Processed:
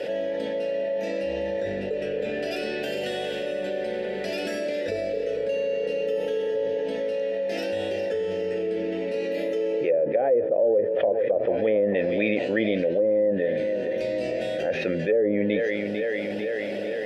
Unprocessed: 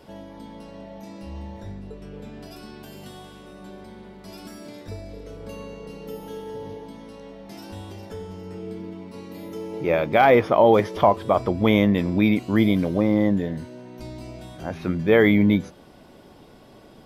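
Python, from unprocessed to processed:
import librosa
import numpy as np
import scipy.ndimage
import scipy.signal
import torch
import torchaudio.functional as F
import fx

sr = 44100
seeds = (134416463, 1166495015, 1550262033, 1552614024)

p1 = fx.vowel_filter(x, sr, vowel='e')
p2 = fx.high_shelf(p1, sr, hz=4400.0, db=8.5)
p3 = p2 + fx.echo_feedback(p2, sr, ms=447, feedback_pct=53, wet_db=-16.5, dry=0)
p4 = fx.env_lowpass_down(p3, sr, base_hz=530.0, full_db=-22.5)
y = fx.env_flatten(p4, sr, amount_pct=70)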